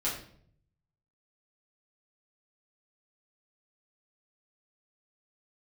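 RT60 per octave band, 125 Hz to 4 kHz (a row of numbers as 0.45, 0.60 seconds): 1.1, 0.80, 0.65, 0.50, 0.50, 0.45 seconds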